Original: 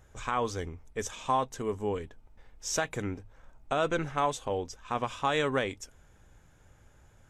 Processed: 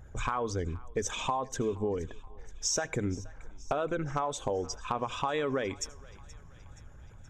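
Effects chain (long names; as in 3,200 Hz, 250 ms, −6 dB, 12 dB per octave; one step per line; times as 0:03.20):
spectral envelope exaggerated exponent 1.5
in parallel at −2.5 dB: brickwall limiter −23 dBFS, peak gain reduction 7 dB
on the sum: downward compressor 16 to 1, threshold −31 dBFS, peak gain reduction 12.5 dB
hard clipping −23 dBFS, distortion −31 dB
feedback echo with a high-pass in the loop 475 ms, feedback 61%, high-pass 780 Hz, level −20 dB
on a send at −22 dB: convolution reverb RT60 0.20 s, pre-delay 75 ms
on the sum: level +4 dB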